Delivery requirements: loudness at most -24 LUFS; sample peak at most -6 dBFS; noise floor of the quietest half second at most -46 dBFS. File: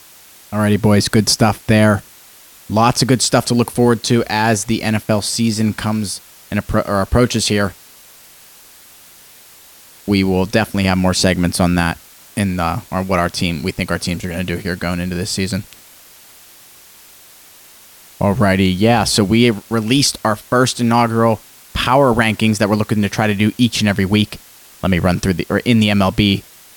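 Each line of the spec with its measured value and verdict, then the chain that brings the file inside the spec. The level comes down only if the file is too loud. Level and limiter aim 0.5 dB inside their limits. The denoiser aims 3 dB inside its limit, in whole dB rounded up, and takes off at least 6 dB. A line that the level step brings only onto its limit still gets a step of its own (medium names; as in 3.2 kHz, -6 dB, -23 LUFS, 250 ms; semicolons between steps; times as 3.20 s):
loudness -16.0 LUFS: fail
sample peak -2.0 dBFS: fail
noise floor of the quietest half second -43 dBFS: fail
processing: trim -8.5 dB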